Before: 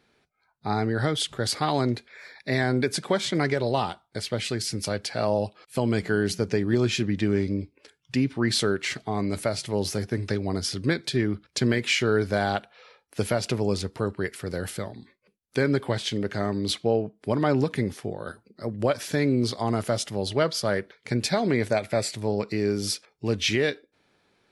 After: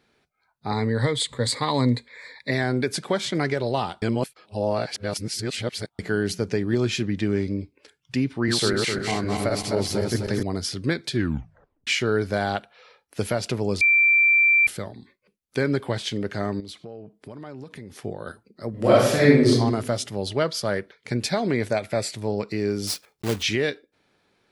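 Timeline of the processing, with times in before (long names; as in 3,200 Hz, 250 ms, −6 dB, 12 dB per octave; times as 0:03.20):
0:00.71–0:02.51: EQ curve with evenly spaced ripples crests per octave 1, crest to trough 12 dB
0:04.02–0:05.99: reverse
0:08.35–0:10.43: feedback delay that plays each chunk backwards 128 ms, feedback 64%, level −2 dB
0:11.13: tape stop 0.74 s
0:13.81–0:14.67: beep over 2,350 Hz −14 dBFS
0:16.60–0:17.96: downward compressor 4 to 1, threshold −38 dBFS
0:18.70–0:19.49: thrown reverb, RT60 0.92 s, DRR −8 dB
0:22.87–0:23.44: one scale factor per block 3 bits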